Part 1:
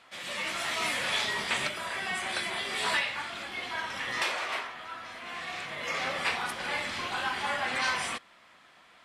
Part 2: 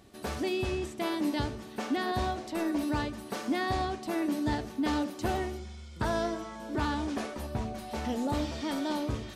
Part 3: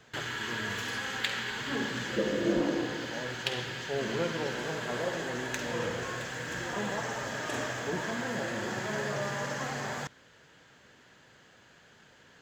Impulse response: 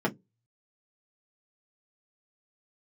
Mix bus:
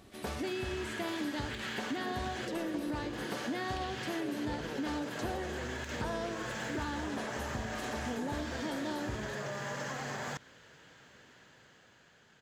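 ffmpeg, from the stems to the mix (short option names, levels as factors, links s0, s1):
-filter_complex "[0:a]volume=0.188[s0];[1:a]volume=1[s1];[2:a]dynaudnorm=f=220:g=13:m=2.11,adelay=300,volume=0.531[s2];[s0][s2]amix=inputs=2:normalize=0,alimiter=level_in=1.41:limit=0.0631:level=0:latency=1:release=134,volume=0.708,volume=1[s3];[s1][s3]amix=inputs=2:normalize=0,acompressor=threshold=0.0178:ratio=3"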